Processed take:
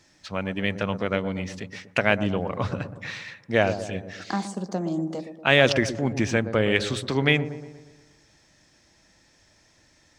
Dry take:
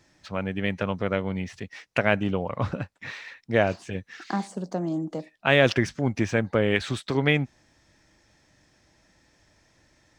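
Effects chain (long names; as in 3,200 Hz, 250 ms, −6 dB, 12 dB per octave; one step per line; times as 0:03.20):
parametric band 5,800 Hz +5.5 dB 2.4 octaves
mains-hum notches 60/120 Hz
delay with a low-pass on its return 119 ms, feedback 52%, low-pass 890 Hz, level −9.5 dB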